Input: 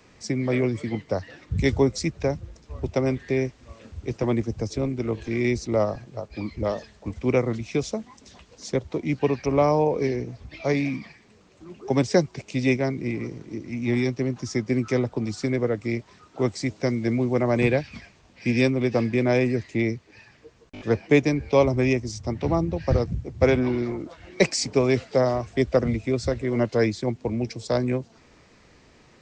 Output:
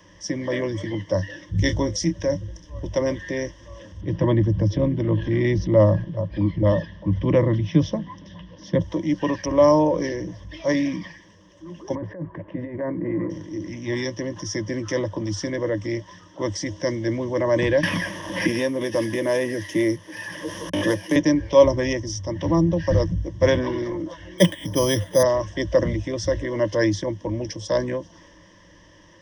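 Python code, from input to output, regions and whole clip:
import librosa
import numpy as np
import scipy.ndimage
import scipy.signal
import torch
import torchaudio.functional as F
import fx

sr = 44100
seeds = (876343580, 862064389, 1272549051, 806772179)

y = fx.chain(x, sr, fx.peak_eq(hz=930.0, db=-4.5, octaves=1.4),
    fx.doubler(ms=28.0, db=-12.0), at=(1.16, 2.87))
y = fx.chain(y, sr, fx.lowpass(hz=4100.0, slope=24),
    fx.peak_eq(hz=150.0, db=14.5, octaves=1.2), at=(4.01, 8.8))
y = fx.chain(y, sr, fx.lowpass(hz=1600.0, slope=24),
    fx.over_compress(threshold_db=-25.0, ratio=-0.5),
    fx.low_shelf(hz=83.0, db=-10.0), at=(11.95, 13.3))
y = fx.chain(y, sr, fx.cvsd(bps=64000),
    fx.highpass(hz=150.0, slope=12),
    fx.band_squash(depth_pct=100), at=(17.83, 21.16))
y = fx.chain(y, sr, fx.highpass(hz=59.0, slope=12),
    fx.peak_eq(hz=90.0, db=7.5, octaves=2.2),
    fx.resample_bad(factor=8, down='filtered', up='hold'), at=(24.38, 25.23))
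y = fx.ripple_eq(y, sr, per_octave=1.2, db=17)
y = fx.transient(y, sr, attack_db=-3, sustain_db=3)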